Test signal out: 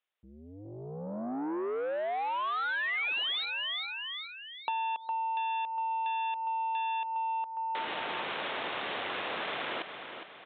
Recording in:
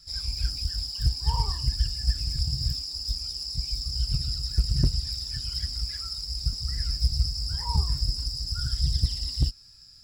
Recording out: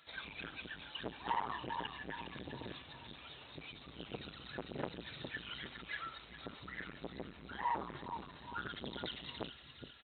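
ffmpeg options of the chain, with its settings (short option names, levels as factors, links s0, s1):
-af "aecho=1:1:410|820|1230|1640:0.251|0.111|0.0486|0.0214,aresample=8000,asoftclip=type=tanh:threshold=0.0299,aresample=44100,highpass=460,acompressor=threshold=0.01:ratio=4,volume=2.66"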